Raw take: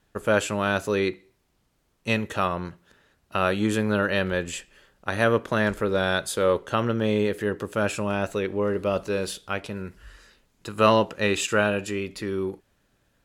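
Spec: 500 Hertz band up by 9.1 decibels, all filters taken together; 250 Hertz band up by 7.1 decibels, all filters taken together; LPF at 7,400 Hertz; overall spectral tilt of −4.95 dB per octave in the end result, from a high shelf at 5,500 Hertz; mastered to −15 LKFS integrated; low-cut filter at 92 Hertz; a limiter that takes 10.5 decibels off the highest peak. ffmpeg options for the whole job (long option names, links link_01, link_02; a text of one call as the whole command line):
ffmpeg -i in.wav -af "highpass=92,lowpass=7400,equalizer=frequency=250:width_type=o:gain=7,equalizer=frequency=500:width_type=o:gain=9,highshelf=frequency=5500:gain=5.5,volume=6dB,alimiter=limit=-3.5dB:level=0:latency=1" out.wav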